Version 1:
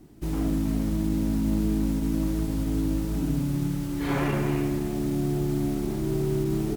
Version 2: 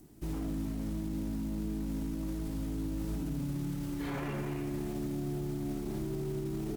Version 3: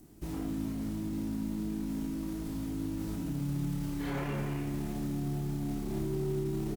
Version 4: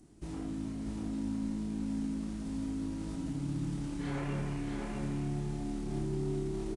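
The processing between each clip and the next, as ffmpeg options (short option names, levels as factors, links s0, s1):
-filter_complex "[0:a]acrossover=split=6100[s0][s1];[s1]acompressor=mode=upward:threshold=0.00178:ratio=2.5[s2];[s0][s2]amix=inputs=2:normalize=0,alimiter=limit=0.0708:level=0:latency=1:release=23,volume=0.531"
-filter_complex "[0:a]asplit=2[s0][s1];[s1]adelay=29,volume=0.596[s2];[s0][s2]amix=inputs=2:normalize=0"
-af "aecho=1:1:642:0.631,aresample=22050,aresample=44100,volume=0.708"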